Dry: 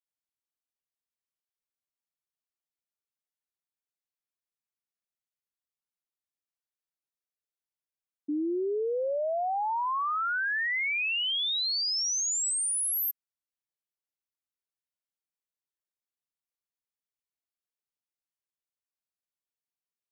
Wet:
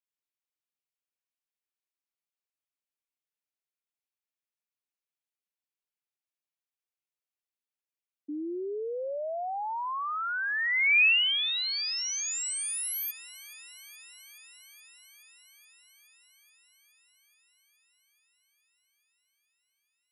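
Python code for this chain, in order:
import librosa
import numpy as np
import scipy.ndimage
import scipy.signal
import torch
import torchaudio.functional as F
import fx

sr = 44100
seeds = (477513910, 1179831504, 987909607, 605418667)

y = scipy.signal.sosfilt(scipy.signal.butter(2, 210.0, 'highpass', fs=sr, output='sos'), x)
y = fx.peak_eq(y, sr, hz=2500.0, db=fx.steps((0.0, 6.0), (8.35, 13.5)), octaves=0.63)
y = fx.echo_wet_highpass(y, sr, ms=423, feedback_pct=78, hz=1500.0, wet_db=-20.0)
y = y * librosa.db_to_amplitude(-4.5)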